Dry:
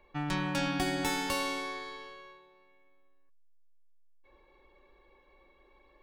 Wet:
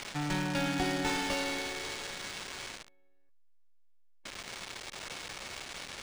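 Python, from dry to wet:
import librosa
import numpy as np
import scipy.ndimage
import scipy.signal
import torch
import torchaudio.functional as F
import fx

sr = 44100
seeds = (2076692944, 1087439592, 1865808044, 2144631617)

y = x + 0.5 * 10.0 ** (-26.5 / 20.0) * np.diff(np.sign(x), prepend=np.sign(x[:1]))
y = fx.peak_eq(y, sr, hz=6500.0, db=-5.5, octaves=1.4)
y = fx.notch(y, sr, hz=1100.0, q=8.0)
y = np.interp(np.arange(len(y)), np.arange(len(y))[::3], y[::3])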